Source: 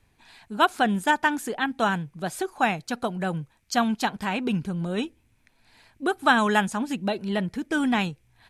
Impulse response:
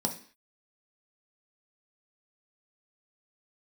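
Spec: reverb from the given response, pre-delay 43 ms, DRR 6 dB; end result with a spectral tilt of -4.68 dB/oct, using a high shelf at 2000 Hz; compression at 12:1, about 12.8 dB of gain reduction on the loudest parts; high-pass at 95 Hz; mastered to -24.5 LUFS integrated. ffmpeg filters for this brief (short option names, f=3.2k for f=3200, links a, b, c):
-filter_complex "[0:a]highpass=95,highshelf=f=2k:g=7.5,acompressor=threshold=-25dB:ratio=12,asplit=2[a][b];[1:a]atrim=start_sample=2205,adelay=43[c];[b][c]afir=irnorm=-1:irlink=0,volume=-11.5dB[d];[a][d]amix=inputs=2:normalize=0,volume=3.5dB"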